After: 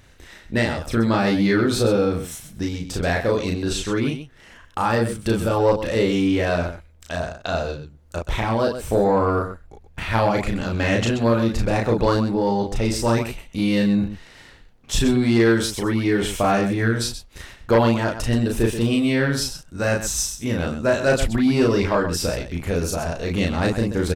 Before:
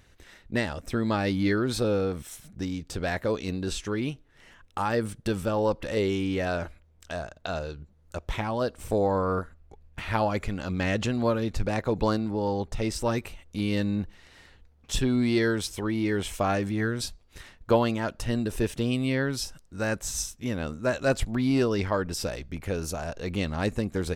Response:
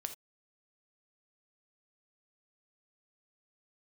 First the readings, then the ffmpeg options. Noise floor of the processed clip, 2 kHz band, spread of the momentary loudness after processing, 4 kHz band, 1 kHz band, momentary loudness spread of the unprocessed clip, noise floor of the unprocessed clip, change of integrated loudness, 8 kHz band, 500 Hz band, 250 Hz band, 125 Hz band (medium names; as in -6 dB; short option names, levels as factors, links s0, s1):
-50 dBFS, +7.0 dB, 10 LU, +7.0 dB, +7.0 dB, 10 LU, -59 dBFS, +7.0 dB, +7.5 dB, +7.0 dB, +7.0 dB, +7.0 dB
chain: -af "aecho=1:1:34.99|128.3:0.794|0.316,aeval=exprs='0.562*sin(PI/2*2*val(0)/0.562)':c=same,volume=0.596"